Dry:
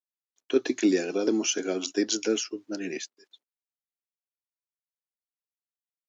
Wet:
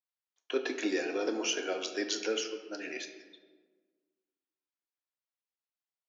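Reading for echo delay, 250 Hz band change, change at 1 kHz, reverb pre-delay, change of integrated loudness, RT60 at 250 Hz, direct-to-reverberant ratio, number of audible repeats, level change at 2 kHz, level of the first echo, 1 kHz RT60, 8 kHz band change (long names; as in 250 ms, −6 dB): no echo audible, −10.0 dB, +0.5 dB, 3 ms, −6.0 dB, 1.8 s, 5.0 dB, no echo audible, −0.5 dB, no echo audible, 1.3 s, can't be measured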